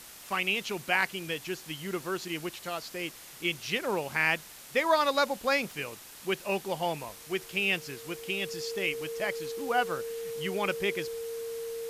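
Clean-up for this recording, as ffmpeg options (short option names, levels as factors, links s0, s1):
-af "bandreject=f=460:w=30,afftdn=nr=28:nf=-48"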